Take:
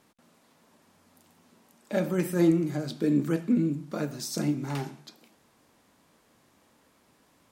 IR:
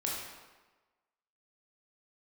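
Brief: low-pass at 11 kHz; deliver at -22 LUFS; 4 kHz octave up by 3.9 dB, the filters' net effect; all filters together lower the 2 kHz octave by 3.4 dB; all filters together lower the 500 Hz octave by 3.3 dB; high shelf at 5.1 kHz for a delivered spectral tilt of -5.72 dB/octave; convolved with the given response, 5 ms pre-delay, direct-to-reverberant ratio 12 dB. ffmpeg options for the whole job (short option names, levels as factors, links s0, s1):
-filter_complex "[0:a]lowpass=11000,equalizer=f=500:t=o:g=-5,equalizer=f=2000:t=o:g=-5.5,equalizer=f=4000:t=o:g=3.5,highshelf=f=5100:g=5,asplit=2[s0][s1];[1:a]atrim=start_sample=2205,adelay=5[s2];[s1][s2]afir=irnorm=-1:irlink=0,volume=0.15[s3];[s0][s3]amix=inputs=2:normalize=0,volume=2.37"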